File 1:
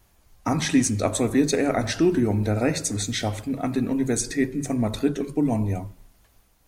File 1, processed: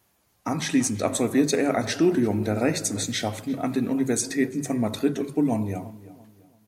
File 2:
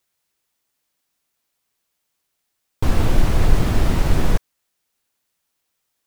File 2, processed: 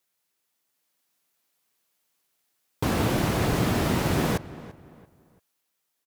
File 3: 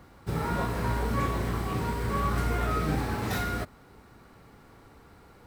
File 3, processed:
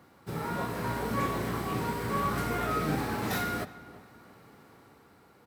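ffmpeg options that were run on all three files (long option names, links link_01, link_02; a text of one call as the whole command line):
ffmpeg -i in.wav -filter_complex "[0:a]highpass=130,equalizer=frequency=12000:width_type=o:width=0.23:gain=4.5,dynaudnorm=framelen=130:gausssize=13:maxgain=3.5dB,asplit=2[link_01][link_02];[link_02]adelay=340,lowpass=frequency=2400:poles=1,volume=-17dB,asplit=2[link_03][link_04];[link_04]adelay=340,lowpass=frequency=2400:poles=1,volume=0.35,asplit=2[link_05][link_06];[link_06]adelay=340,lowpass=frequency=2400:poles=1,volume=0.35[link_07];[link_03][link_05][link_07]amix=inputs=3:normalize=0[link_08];[link_01][link_08]amix=inputs=2:normalize=0,volume=-3.5dB" out.wav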